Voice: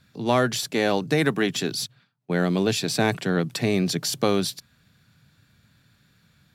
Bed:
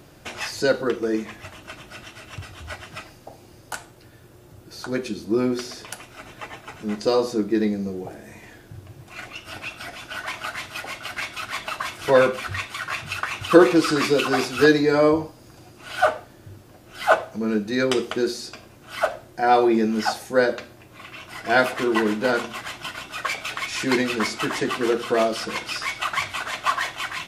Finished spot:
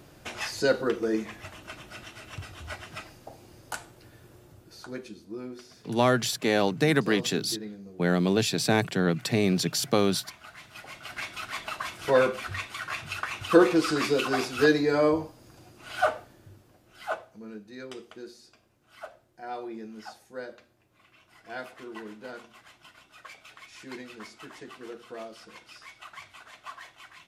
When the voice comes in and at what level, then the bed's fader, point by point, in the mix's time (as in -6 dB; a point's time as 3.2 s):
5.70 s, -1.5 dB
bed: 4.35 s -3.5 dB
5.33 s -17 dB
10.46 s -17 dB
11.26 s -5.5 dB
16.2 s -5.5 dB
17.61 s -20 dB